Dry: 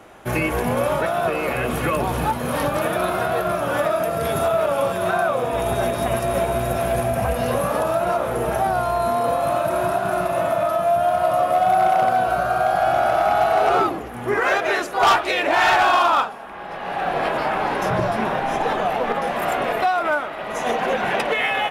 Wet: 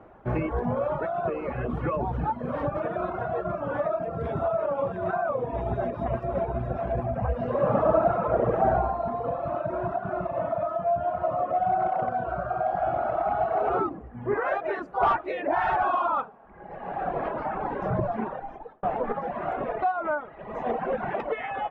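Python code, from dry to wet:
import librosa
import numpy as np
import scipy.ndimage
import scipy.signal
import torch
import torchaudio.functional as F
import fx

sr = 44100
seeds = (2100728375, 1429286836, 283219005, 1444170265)

y = fx.reverb_throw(x, sr, start_s=7.49, length_s=1.19, rt60_s=2.3, drr_db=-4.5)
y = fx.edit(y, sr, fx.fade_out_span(start_s=18.19, length_s=0.64), tone=tone)
y = scipy.signal.sosfilt(scipy.signal.butter(2, 1200.0, 'lowpass', fs=sr, output='sos'), y)
y = fx.dereverb_blind(y, sr, rt60_s=1.6)
y = fx.low_shelf(y, sr, hz=120.0, db=5.5)
y = F.gain(torch.from_numpy(y), -4.0).numpy()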